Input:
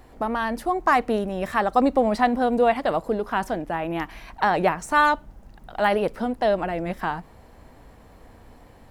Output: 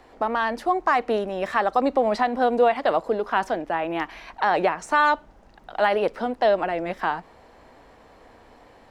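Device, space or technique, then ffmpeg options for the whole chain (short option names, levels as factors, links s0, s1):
DJ mixer with the lows and highs turned down: -filter_complex "[0:a]acrossover=split=290 7000:gain=0.251 1 0.2[s0][s1][s2];[s0][s1][s2]amix=inputs=3:normalize=0,alimiter=limit=0.251:level=0:latency=1:release=146,volume=1.33"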